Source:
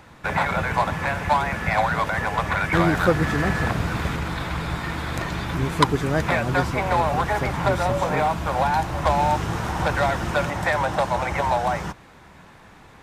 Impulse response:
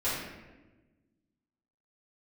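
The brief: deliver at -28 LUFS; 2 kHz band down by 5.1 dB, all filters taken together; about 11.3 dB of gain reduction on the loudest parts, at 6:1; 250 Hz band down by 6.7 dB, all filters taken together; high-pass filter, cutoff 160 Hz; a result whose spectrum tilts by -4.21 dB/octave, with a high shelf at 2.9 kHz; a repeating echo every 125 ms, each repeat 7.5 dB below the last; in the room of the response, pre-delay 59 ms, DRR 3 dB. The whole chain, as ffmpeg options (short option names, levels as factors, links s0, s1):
-filter_complex "[0:a]highpass=160,equalizer=f=250:t=o:g=-8.5,equalizer=f=2000:t=o:g=-8.5,highshelf=f=2900:g=5,acompressor=threshold=0.0501:ratio=6,aecho=1:1:125|250|375|500|625:0.422|0.177|0.0744|0.0312|0.0131,asplit=2[s0][s1];[1:a]atrim=start_sample=2205,adelay=59[s2];[s1][s2]afir=irnorm=-1:irlink=0,volume=0.251[s3];[s0][s3]amix=inputs=2:normalize=0"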